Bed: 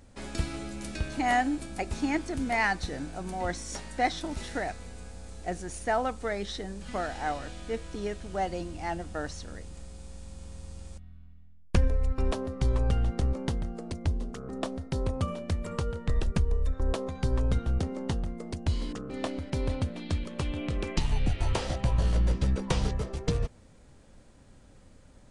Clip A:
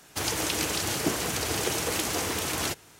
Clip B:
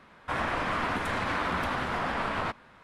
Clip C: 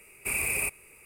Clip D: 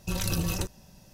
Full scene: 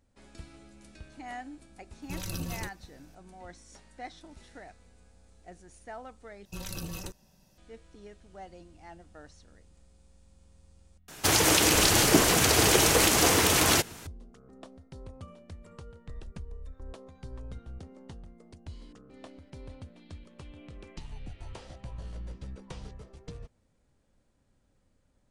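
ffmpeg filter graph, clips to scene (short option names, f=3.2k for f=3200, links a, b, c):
-filter_complex "[4:a]asplit=2[a][b];[0:a]volume=-15.5dB[c];[b]equalizer=f=93:w=1.4:g=-5[d];[1:a]alimiter=level_in=13.5dB:limit=-1dB:release=50:level=0:latency=1[e];[c]asplit=2[f][g];[f]atrim=end=6.454[h];[d]atrim=end=1.13,asetpts=PTS-STARTPTS,volume=-8.5dB[i];[g]atrim=start=7.576[j];[a]atrim=end=1.13,asetpts=PTS-STARTPTS,volume=-7.5dB,afade=t=in:d=0.004:c=hsin,afade=t=out:st=1.126:d=0.004:c=hsin,adelay=2020[k];[e]atrim=end=2.99,asetpts=PTS-STARTPTS,volume=-6.5dB,afade=t=in:d=0.004:c=hsin,afade=t=out:st=2.986:d=0.004:c=hsin,adelay=11080[l];[h][i]acrossfade=d=0.004:c1=hsin:c2=hsin[m];[m][j]acrossfade=d=0.004:c1=hsin:c2=hsin[n];[n][k][l]amix=inputs=3:normalize=0"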